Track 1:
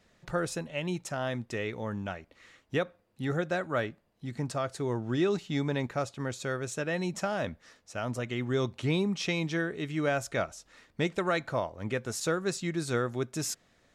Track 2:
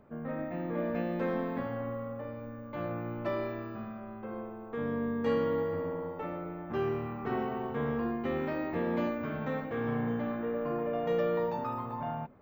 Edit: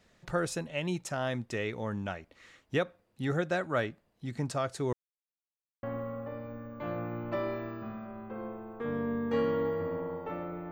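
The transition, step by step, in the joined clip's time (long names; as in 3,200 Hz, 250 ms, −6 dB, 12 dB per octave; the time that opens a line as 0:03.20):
track 1
0:04.93–0:05.83: silence
0:05.83: continue with track 2 from 0:01.76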